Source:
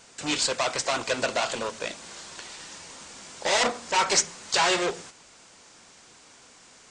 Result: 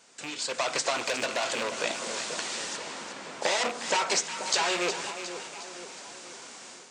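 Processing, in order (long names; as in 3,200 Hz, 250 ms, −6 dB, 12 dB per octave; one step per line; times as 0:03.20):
loose part that buzzes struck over −39 dBFS, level −19 dBFS
downward compressor 6 to 1, threshold −31 dBFS, peak gain reduction 13.5 dB
0:02.76–0:03.41: low-pass filter 3,800 Hz → 1,900 Hz
automatic gain control gain up to 13 dB
high-pass filter 190 Hz 12 dB per octave
echo with a time of its own for lows and highs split 990 Hz, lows 483 ms, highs 360 ms, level −9.5 dB
0:00.93–0:01.84: saturating transformer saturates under 2,900 Hz
level −6 dB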